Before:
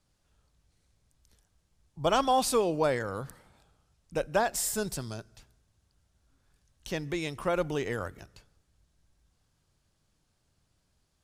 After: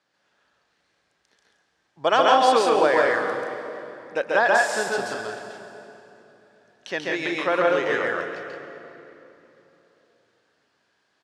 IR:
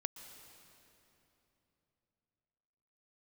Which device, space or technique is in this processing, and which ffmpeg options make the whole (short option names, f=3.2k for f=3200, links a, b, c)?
station announcement: -filter_complex "[0:a]highpass=390,lowpass=4.2k,equalizer=f=1.7k:t=o:w=0.36:g=8,aecho=1:1:137|172:0.891|0.562[a];[1:a]atrim=start_sample=2205[b];[a][b]afir=irnorm=-1:irlink=0,volume=8dB"